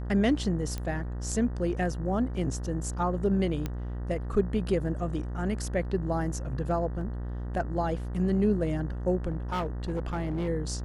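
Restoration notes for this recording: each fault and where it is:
mains buzz 60 Hz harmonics 32 −34 dBFS
0:00.78: click −20 dBFS
0:03.66: click −18 dBFS
0:07.01: drop-out 2.6 ms
0:09.30–0:10.49: clipping −26 dBFS

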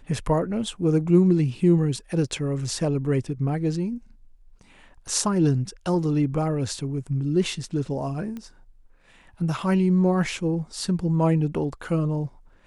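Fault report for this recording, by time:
0:08.37: click −23 dBFS

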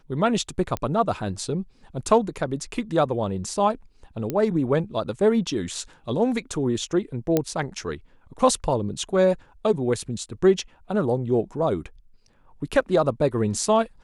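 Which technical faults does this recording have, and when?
0:00.77: click −13 dBFS
0:04.30: click −13 dBFS
0:07.37: click −7 dBFS

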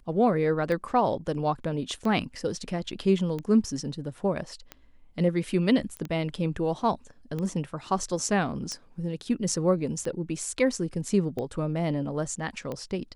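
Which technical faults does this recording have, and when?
scratch tick 45 rpm −21 dBFS
0:05.97: click −22 dBFS

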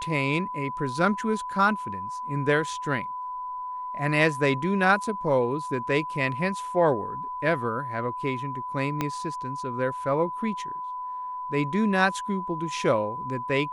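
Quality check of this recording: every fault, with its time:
whistle 1,000 Hz −31 dBFS
0:09.01: click −12 dBFS

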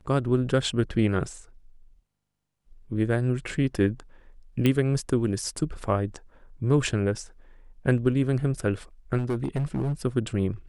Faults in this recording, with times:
0:04.66: click −11 dBFS
0:09.17–0:09.93: clipping −22.5 dBFS

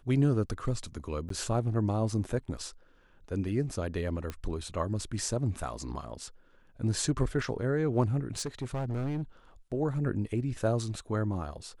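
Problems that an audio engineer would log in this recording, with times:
0:01.29–0:01.30: drop-out 13 ms
0:04.30: click −22 dBFS
0:08.37–0:09.22: clipping −29 dBFS

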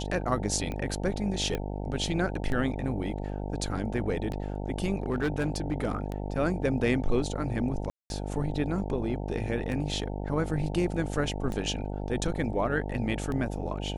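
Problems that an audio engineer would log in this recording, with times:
mains buzz 50 Hz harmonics 18 −34 dBFS
scratch tick 33 1/3 rpm −22 dBFS
0:01.55: click −18 dBFS
0:05.03–0:05.95: clipping −22.5 dBFS
0:07.90–0:08.10: drop-out 201 ms

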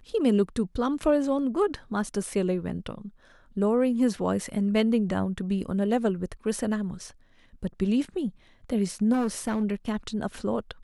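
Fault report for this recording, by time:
0:09.12–0:09.64: clipping −22 dBFS

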